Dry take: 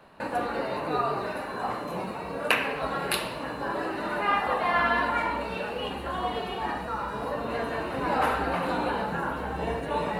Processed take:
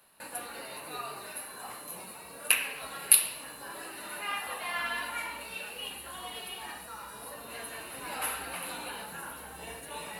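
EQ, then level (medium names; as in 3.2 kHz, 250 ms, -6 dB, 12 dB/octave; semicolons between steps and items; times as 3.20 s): pre-emphasis filter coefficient 0.9; dynamic bell 2.6 kHz, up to +5 dB, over -54 dBFS, Q 1.8; peaking EQ 11 kHz +14 dB 0.39 oct; +2.5 dB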